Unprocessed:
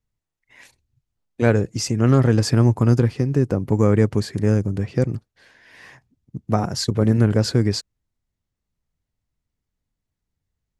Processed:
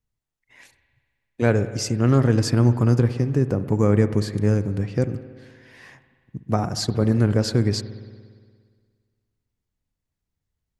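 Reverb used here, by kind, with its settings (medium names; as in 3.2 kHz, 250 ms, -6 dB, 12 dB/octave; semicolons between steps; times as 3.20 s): spring tank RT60 1.8 s, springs 58 ms, chirp 40 ms, DRR 12 dB; trim -2 dB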